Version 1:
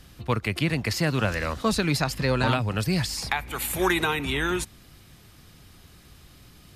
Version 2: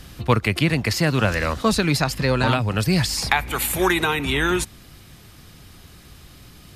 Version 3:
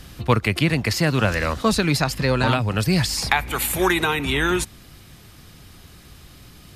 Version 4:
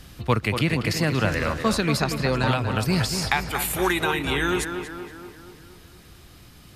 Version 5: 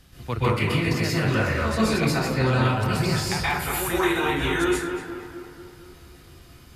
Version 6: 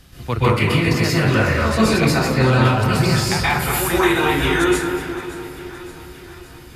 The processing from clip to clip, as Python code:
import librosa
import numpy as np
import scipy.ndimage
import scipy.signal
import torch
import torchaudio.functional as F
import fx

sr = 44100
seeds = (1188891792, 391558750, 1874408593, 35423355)

y1 = fx.rider(x, sr, range_db=10, speed_s=0.5)
y1 = y1 * librosa.db_to_amplitude(5.0)
y2 = y1
y3 = fx.echo_tape(y2, sr, ms=236, feedback_pct=61, wet_db=-6, lp_hz=2500.0, drive_db=4.0, wow_cents=20)
y3 = y3 * librosa.db_to_amplitude(-3.5)
y4 = fx.rev_plate(y3, sr, seeds[0], rt60_s=0.56, hf_ratio=0.6, predelay_ms=115, drr_db=-8.5)
y4 = y4 * librosa.db_to_amplitude(-9.0)
y5 = fx.echo_feedback(y4, sr, ms=569, feedback_pct=58, wet_db=-16.5)
y5 = y5 * librosa.db_to_amplitude(6.0)